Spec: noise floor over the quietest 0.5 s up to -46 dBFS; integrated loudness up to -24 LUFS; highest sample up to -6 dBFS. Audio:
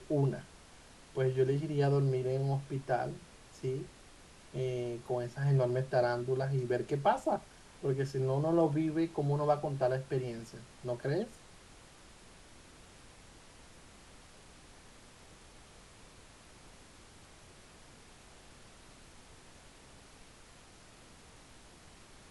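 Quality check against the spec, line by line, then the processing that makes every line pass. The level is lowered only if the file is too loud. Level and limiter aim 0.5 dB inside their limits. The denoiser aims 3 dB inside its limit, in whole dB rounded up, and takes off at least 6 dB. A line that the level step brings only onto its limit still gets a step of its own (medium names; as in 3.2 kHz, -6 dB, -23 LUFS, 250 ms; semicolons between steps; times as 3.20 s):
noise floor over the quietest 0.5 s -57 dBFS: pass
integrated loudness -33.5 LUFS: pass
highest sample -16.5 dBFS: pass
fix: none needed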